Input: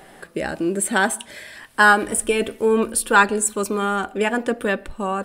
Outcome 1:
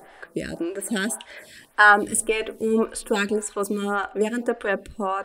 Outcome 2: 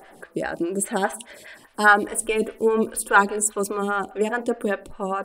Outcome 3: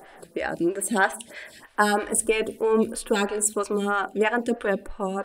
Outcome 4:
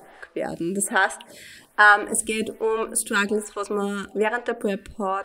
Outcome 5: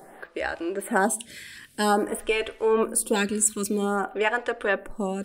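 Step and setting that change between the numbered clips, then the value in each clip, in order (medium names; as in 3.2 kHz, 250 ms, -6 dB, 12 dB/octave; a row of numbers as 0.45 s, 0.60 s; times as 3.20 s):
lamp-driven phase shifter, rate: 1.8 Hz, 4.9 Hz, 3.1 Hz, 1.2 Hz, 0.51 Hz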